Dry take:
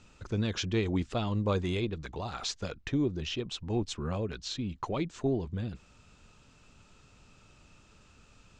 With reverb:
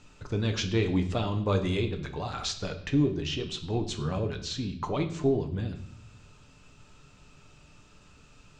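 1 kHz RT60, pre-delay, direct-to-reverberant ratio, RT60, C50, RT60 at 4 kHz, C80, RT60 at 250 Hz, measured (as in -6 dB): 0.65 s, 7 ms, 4.5 dB, 0.70 s, 11.5 dB, 0.70 s, 14.0 dB, 1.1 s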